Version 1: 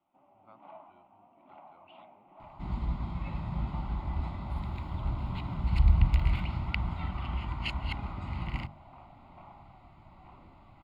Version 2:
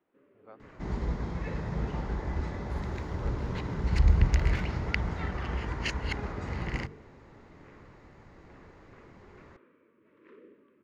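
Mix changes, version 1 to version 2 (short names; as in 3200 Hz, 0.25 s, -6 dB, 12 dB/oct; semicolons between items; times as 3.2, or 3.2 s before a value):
first sound: add Butterworth band-stop 760 Hz, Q 1; second sound: entry -1.80 s; master: remove fixed phaser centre 1700 Hz, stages 6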